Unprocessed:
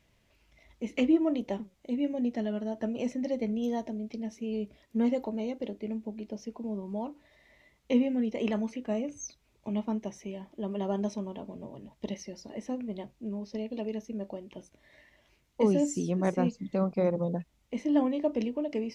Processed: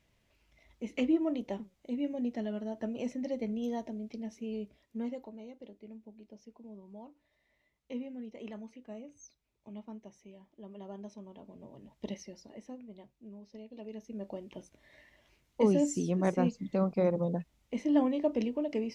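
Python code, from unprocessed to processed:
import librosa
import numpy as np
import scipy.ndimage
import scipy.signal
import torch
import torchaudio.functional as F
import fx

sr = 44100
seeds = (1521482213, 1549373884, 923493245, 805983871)

y = fx.gain(x, sr, db=fx.line((4.47, -4.0), (5.4, -14.0), (11.08, -14.0), (12.09, -3.0), (12.87, -13.0), (13.7, -13.0), (14.38, -1.0)))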